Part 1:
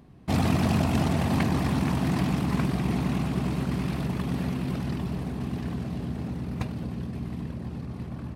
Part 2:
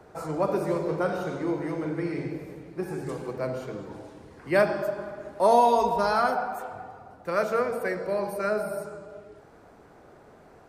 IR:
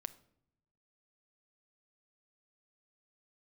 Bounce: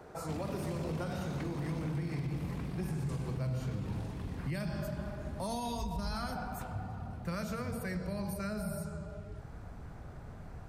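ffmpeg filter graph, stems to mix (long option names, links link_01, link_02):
-filter_complex "[0:a]volume=18.5dB,asoftclip=hard,volume=-18.5dB,volume=-15.5dB[link_01];[1:a]acrossover=split=200|3000[link_02][link_03][link_04];[link_03]acompressor=threshold=-45dB:ratio=2[link_05];[link_02][link_05][link_04]amix=inputs=3:normalize=0,asubboost=boost=10:cutoff=120,volume=0dB[link_06];[link_01][link_06]amix=inputs=2:normalize=0,alimiter=level_in=4dB:limit=-24dB:level=0:latency=1:release=76,volume=-4dB"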